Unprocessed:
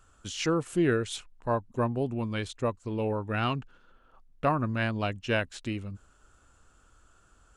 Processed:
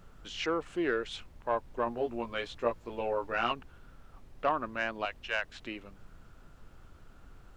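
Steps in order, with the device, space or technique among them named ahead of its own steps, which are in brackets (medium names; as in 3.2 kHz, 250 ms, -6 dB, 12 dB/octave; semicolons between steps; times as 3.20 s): 5.05–5.60 s: high-pass 800 Hz 12 dB/octave; aircraft cabin announcement (band-pass 440–3500 Hz; saturation -17.5 dBFS, distortion -21 dB; brown noise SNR 15 dB); 1.85–3.52 s: doubling 17 ms -3 dB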